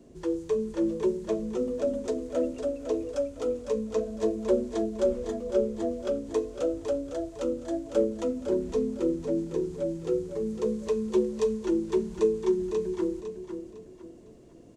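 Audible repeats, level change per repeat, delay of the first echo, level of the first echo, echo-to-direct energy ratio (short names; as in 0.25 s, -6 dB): 3, -9.5 dB, 0.505 s, -8.5 dB, -8.0 dB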